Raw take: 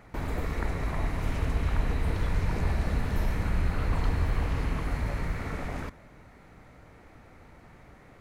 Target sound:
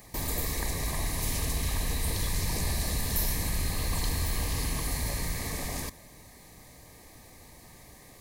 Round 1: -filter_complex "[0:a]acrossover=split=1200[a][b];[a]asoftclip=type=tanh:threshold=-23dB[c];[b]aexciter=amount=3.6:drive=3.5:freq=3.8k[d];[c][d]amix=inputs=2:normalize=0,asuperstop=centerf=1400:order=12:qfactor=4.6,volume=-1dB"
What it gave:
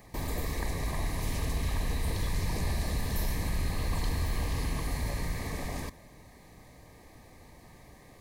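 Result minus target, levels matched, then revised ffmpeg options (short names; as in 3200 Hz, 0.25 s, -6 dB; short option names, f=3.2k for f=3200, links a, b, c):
8000 Hz band -6.5 dB
-filter_complex "[0:a]acrossover=split=1200[a][b];[a]asoftclip=type=tanh:threshold=-23dB[c];[b]aexciter=amount=3.6:drive=3.5:freq=3.8k[d];[c][d]amix=inputs=2:normalize=0,asuperstop=centerf=1400:order=12:qfactor=4.6,highshelf=f=4.1k:g=11.5,volume=-1dB"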